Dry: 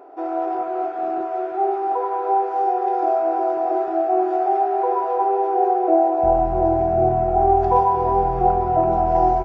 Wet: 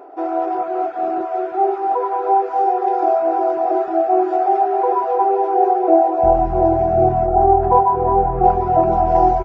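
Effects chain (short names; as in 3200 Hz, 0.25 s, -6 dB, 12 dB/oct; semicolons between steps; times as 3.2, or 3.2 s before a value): 7.26–8.44 LPF 1700 Hz 12 dB/oct; reverb removal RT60 0.52 s; gain +4.5 dB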